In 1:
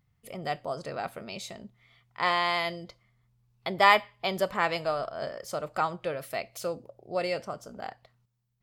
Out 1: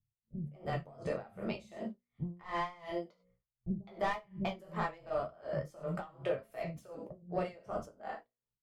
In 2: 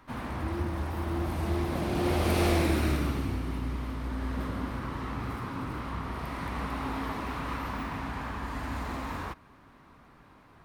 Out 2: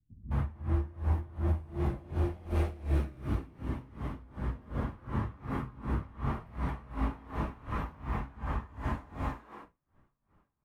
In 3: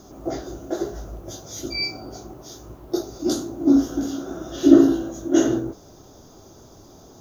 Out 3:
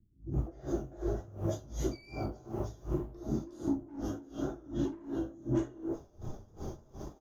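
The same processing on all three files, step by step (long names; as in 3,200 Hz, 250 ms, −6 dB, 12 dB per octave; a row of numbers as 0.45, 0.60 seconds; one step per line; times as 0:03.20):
automatic gain control gain up to 5 dB
flanger 0.79 Hz, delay 9.2 ms, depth 6.5 ms, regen −33%
parametric band 4,300 Hz −5.5 dB 0.74 octaves
noise gate −45 dBFS, range −20 dB
multiband delay without the direct sound lows, highs 210 ms, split 230 Hz
soft clipping −21 dBFS
downward compressor 6 to 1, threshold −38 dBFS
reverb whose tail is shaped and stops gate 120 ms falling, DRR 1.5 dB
pitch vibrato 3.4 Hz 27 cents
spectral tilt −2.5 dB per octave
mains-hum notches 60/120/180/240/300/360/420/480/540 Hz
tremolo with a sine in dB 2.7 Hz, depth 23 dB
level +4.5 dB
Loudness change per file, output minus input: −10.5, −3.5, −16.0 LU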